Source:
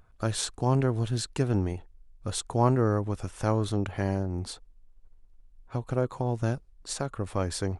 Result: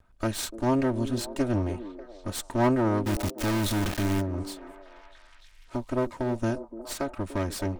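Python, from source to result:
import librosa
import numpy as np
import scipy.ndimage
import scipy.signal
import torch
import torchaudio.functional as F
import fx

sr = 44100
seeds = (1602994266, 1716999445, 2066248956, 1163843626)

y = fx.lower_of_two(x, sr, delay_ms=3.2)
y = fx.quant_companded(y, sr, bits=2, at=(3.05, 4.2), fade=0.02)
y = fx.echo_stepped(y, sr, ms=293, hz=360.0, octaves=0.7, feedback_pct=70, wet_db=-9.5)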